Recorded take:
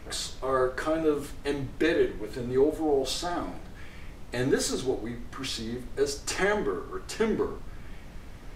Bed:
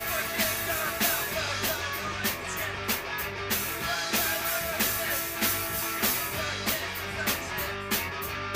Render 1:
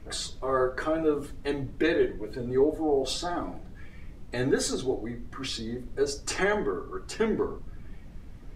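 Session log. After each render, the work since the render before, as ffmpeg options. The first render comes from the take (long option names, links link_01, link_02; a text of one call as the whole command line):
ffmpeg -i in.wav -af "afftdn=noise_reduction=9:noise_floor=-44" out.wav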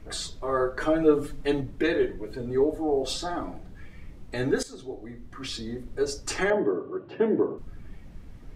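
ffmpeg -i in.wav -filter_complex "[0:a]asettb=1/sr,asplit=3[link_01][link_02][link_03];[link_01]atrim=end=0.804[link_04];[link_02]atrim=start=0.8:end=1.61,asetpts=PTS-STARTPTS,afade=type=in:duration=0.004:curve=qsin,afade=type=out:start_time=0.806:duration=0.004:curve=qsin,aecho=1:1:6.7:0.95,atrim=end_sample=35721[link_05];[link_03]atrim=start=1.606[link_06];[link_04][link_05]acrossfade=duration=0.004:curve1=hsin:curve2=qsin[link_07];[link_07][link_06]acrossfade=duration=0.004:curve1=qsin:curve2=hsin,asettb=1/sr,asplit=3[link_08][link_09][link_10];[link_08]atrim=end=6.504[link_11];[link_09]atrim=start=6.5:end=7.58,asetpts=PTS-STARTPTS,afade=type=in:duration=0.004:curve=qsin,afade=type=out:start_time=1.076:duration=0.004:curve=qsin,highpass=frequency=120:width=0.5412,highpass=frequency=120:width=1.3066,equalizer=frequency=120:width_type=q:width=4:gain=4,equalizer=frequency=330:width_type=q:width=4:gain=9,equalizer=frequency=580:width_type=q:width=4:gain=9,equalizer=frequency=1300:width_type=q:width=4:gain=-7,equalizer=frequency=2100:width_type=q:width=4:gain=-9,lowpass=frequency=2700:width=0.5412,lowpass=frequency=2700:width=1.3066[link_12];[link_10]atrim=start=7.576[link_13];[link_11][link_12]acrossfade=duration=0.004:curve1=hsin:curve2=qsin[link_14];[link_14][link_13]acrossfade=duration=0.004:curve1=qsin:curve2=hsin,asplit=2[link_15][link_16];[link_15]atrim=end=4.63,asetpts=PTS-STARTPTS,afade=type=out:start_time=4.626:duration=0.004:curve=hsin:silence=0.158489[link_17];[link_16]atrim=start=4.63,asetpts=PTS-STARTPTS,afade=type=in:duration=1.04:silence=0.158489[link_18];[link_17][link_18]concat=n=2:v=0:a=1" out.wav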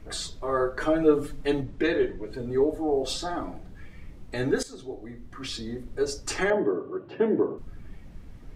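ffmpeg -i in.wav -filter_complex "[0:a]asettb=1/sr,asplit=3[link_01][link_02][link_03];[link_01]atrim=end=1.634[link_04];[link_02]atrim=start=1.63:end=2.33,asetpts=PTS-STARTPTS,afade=type=in:duration=0.004:curve=qsin,afade=type=out:start_time=0.696:duration=0.004:curve=qsin,lowpass=7600[link_05];[link_03]atrim=start=2.326[link_06];[link_04][link_05]acrossfade=duration=0.004:curve1=hsin:curve2=qsin[link_07];[link_07][link_06]acrossfade=duration=0.004:curve1=qsin:curve2=hsin" out.wav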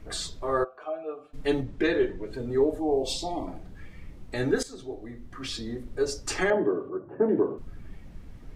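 ffmpeg -i in.wav -filter_complex "[0:a]asplit=3[link_01][link_02][link_03];[link_01]afade=type=out:start_time=0.63:duration=0.02[link_04];[link_02]asplit=3[link_05][link_06][link_07];[link_05]bandpass=frequency=730:width_type=q:width=8,volume=0dB[link_08];[link_06]bandpass=frequency=1090:width_type=q:width=8,volume=-6dB[link_09];[link_07]bandpass=frequency=2440:width_type=q:width=8,volume=-9dB[link_10];[link_08][link_09][link_10]amix=inputs=3:normalize=0,afade=type=in:start_time=0.63:duration=0.02,afade=type=out:start_time=1.33:duration=0.02[link_11];[link_03]afade=type=in:start_time=1.33:duration=0.02[link_12];[link_04][link_11][link_12]amix=inputs=3:normalize=0,asplit=3[link_13][link_14][link_15];[link_13]afade=type=out:start_time=2.79:duration=0.02[link_16];[link_14]asuperstop=centerf=1500:order=12:qfactor=1.6,afade=type=in:start_time=2.79:duration=0.02,afade=type=out:start_time=3.46:duration=0.02[link_17];[link_15]afade=type=in:start_time=3.46:duration=0.02[link_18];[link_16][link_17][link_18]amix=inputs=3:normalize=0,asettb=1/sr,asplit=3[link_19][link_20][link_21];[link_19]atrim=end=6.894[link_22];[link_20]atrim=start=6.89:end=7.29,asetpts=PTS-STARTPTS,afade=type=in:duration=0.004:curve=qsin,afade=type=out:start_time=0.396:duration=0.004:curve=qsin,lowpass=frequency=1400:width=0.5412,lowpass=frequency=1400:width=1.3066[link_23];[link_21]atrim=start=7.286[link_24];[link_22][link_23]acrossfade=duration=0.004:curve1=hsin:curve2=qsin[link_25];[link_25][link_24]acrossfade=duration=0.004:curve1=qsin:curve2=hsin" out.wav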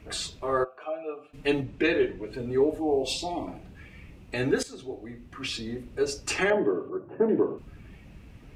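ffmpeg -i in.wav -af "highpass=47,equalizer=frequency=2600:width=3.9:gain=10" out.wav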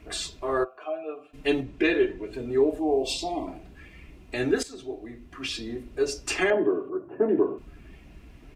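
ffmpeg -i in.wav -af "equalizer=frequency=98:width=5.7:gain=-13,aecho=1:1:2.9:0.37" out.wav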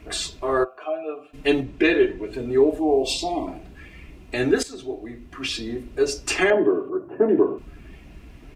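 ffmpeg -i in.wav -af "volume=4.5dB" out.wav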